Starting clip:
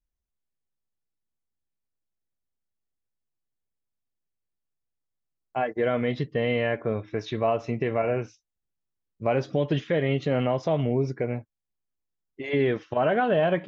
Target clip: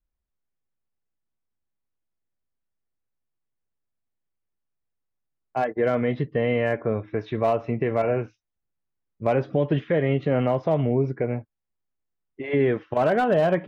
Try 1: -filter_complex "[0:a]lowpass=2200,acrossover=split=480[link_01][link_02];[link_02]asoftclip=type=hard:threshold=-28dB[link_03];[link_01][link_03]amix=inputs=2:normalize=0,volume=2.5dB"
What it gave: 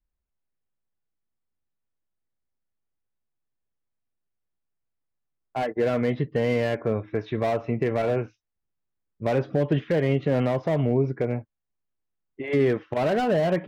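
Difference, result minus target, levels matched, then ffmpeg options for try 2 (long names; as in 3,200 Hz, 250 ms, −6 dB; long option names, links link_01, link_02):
hard clipping: distortion +14 dB
-filter_complex "[0:a]lowpass=2200,acrossover=split=480[link_01][link_02];[link_02]asoftclip=type=hard:threshold=-20.5dB[link_03];[link_01][link_03]amix=inputs=2:normalize=0,volume=2.5dB"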